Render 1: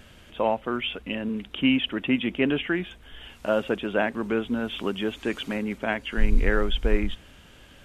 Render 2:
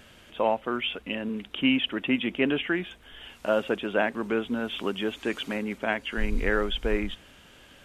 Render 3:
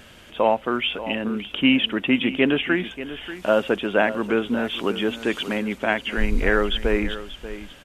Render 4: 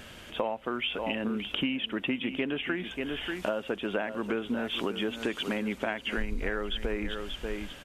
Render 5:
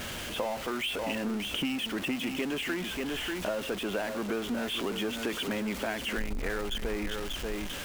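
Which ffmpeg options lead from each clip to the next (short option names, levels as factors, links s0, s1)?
-af "lowshelf=f=150:g=-8.5"
-af "aecho=1:1:586:0.211,volume=1.88"
-af "acompressor=threshold=0.0447:ratio=10"
-af "aeval=exprs='val(0)+0.5*0.0355*sgn(val(0))':c=same,volume=0.596"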